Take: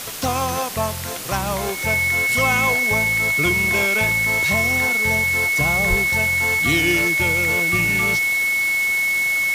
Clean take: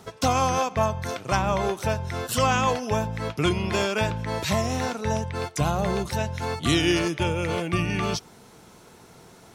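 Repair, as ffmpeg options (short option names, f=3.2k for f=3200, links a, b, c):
-filter_complex "[0:a]bandreject=f=2.2k:w=30,asplit=3[a][b][c];[a]afade=t=out:st=5.89:d=0.02[d];[b]highpass=f=140:w=0.5412,highpass=f=140:w=1.3066,afade=t=in:st=5.89:d=0.02,afade=t=out:st=6.01:d=0.02[e];[c]afade=t=in:st=6.01:d=0.02[f];[d][e][f]amix=inputs=3:normalize=0,afwtdn=0.032"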